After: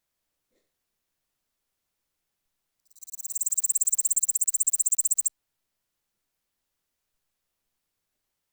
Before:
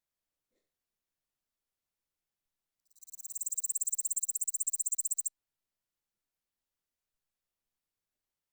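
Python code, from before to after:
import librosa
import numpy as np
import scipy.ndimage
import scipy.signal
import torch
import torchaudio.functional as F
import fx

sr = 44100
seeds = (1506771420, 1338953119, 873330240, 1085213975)

y = fx.block_float(x, sr, bits=7)
y = F.gain(torch.from_numpy(y), 9.0).numpy()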